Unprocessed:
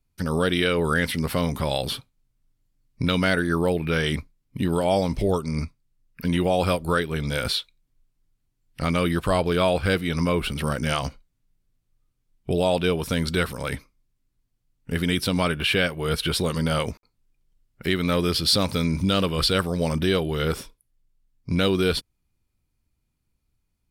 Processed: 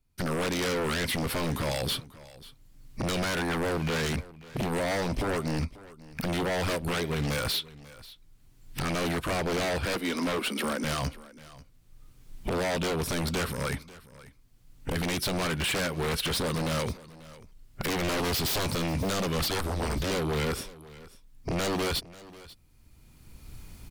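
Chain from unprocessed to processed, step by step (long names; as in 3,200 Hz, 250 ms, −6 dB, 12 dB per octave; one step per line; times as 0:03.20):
camcorder AGC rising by 18 dB per second
0:09.85–0:10.84: Butterworth high-pass 200 Hz 72 dB per octave
in parallel at +2 dB: brickwall limiter −14.5 dBFS, peak gain reduction 10 dB
0:17.88–0:18.74: on the sum: leveller curve on the samples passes 1
0:19.48–0:20.11: frequency shifter −93 Hz
wave folding −15.5 dBFS
on a send: single-tap delay 540 ms −19.5 dB
on the sum: level −8 dB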